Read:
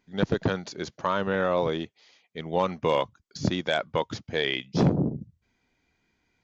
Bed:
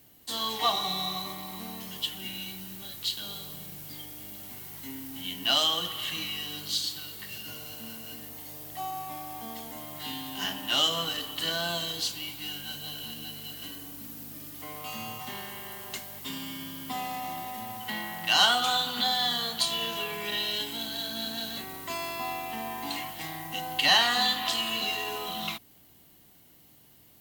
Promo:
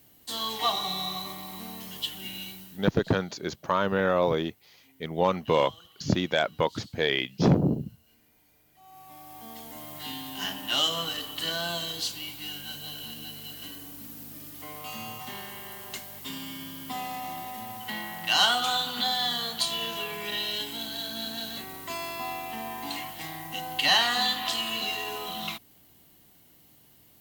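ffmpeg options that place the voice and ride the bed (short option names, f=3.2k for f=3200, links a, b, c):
-filter_complex "[0:a]adelay=2650,volume=1dB[a];[1:a]volume=21dB,afade=t=out:st=2.43:d=0.49:silence=0.0841395,afade=t=in:st=8.81:d=1.07:silence=0.0841395[b];[a][b]amix=inputs=2:normalize=0"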